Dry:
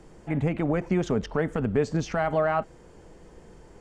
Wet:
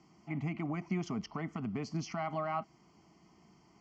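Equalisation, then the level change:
loudspeaker in its box 240–5,500 Hz, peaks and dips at 270 Hz −4 dB, 390 Hz −6 dB, 560 Hz −6 dB, 890 Hz −10 dB, 1,400 Hz −8 dB, 2,600 Hz −9 dB
phaser with its sweep stopped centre 2,500 Hz, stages 8
0.0 dB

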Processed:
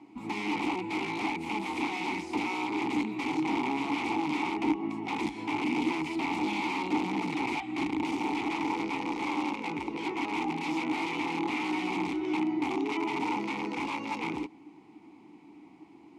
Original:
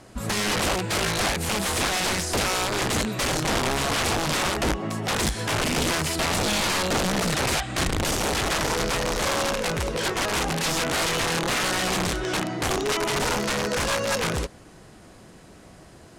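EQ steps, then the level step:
formant filter u
low-shelf EQ 79 Hz −10 dB
+7.5 dB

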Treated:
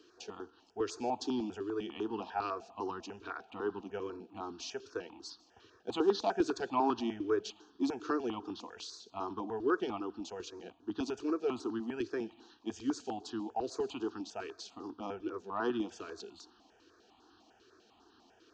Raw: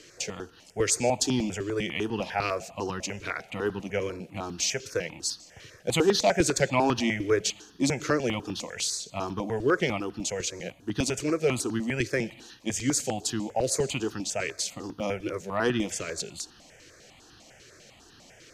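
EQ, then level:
Gaussian smoothing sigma 2.2 samples
high-pass filter 250 Hz 6 dB per octave
phaser with its sweep stopped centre 560 Hz, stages 6
−2.5 dB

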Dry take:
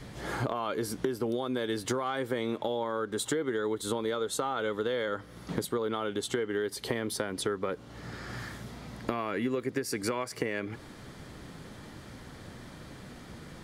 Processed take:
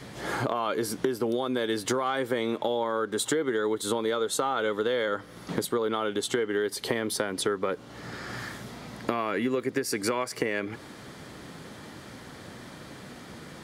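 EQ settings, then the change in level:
high-pass filter 180 Hz 6 dB per octave
+4.5 dB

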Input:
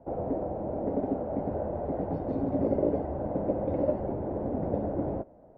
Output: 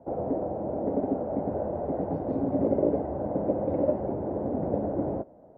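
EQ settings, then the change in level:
high-pass filter 120 Hz 6 dB per octave
high-shelf EQ 2,100 Hz −10 dB
+3.0 dB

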